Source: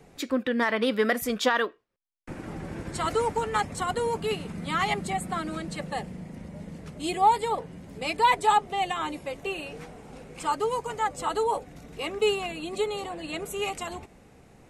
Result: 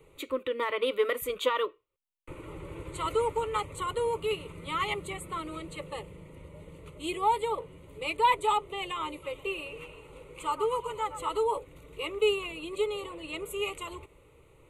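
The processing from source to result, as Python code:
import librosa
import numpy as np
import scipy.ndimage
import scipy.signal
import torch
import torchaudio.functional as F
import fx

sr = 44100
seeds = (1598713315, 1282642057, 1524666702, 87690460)

y = fx.fixed_phaser(x, sr, hz=1100.0, stages=8)
y = fx.echo_stepped(y, sr, ms=115, hz=1200.0, octaves=0.7, feedback_pct=70, wet_db=-9, at=(9.22, 11.37), fade=0.02)
y = F.gain(torch.from_numpy(y), -1.0).numpy()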